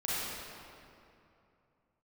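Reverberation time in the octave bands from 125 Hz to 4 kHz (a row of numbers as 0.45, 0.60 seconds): 3.3, 2.9, 2.8, 2.7, 2.2, 1.7 seconds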